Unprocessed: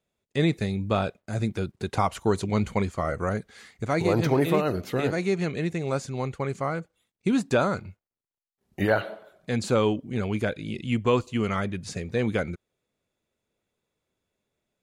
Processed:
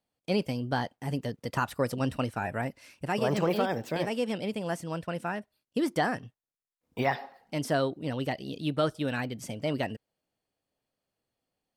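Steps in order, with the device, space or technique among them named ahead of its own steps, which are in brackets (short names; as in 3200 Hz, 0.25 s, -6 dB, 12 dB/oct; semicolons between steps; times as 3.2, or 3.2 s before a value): nightcore (varispeed +26%); gain -4.5 dB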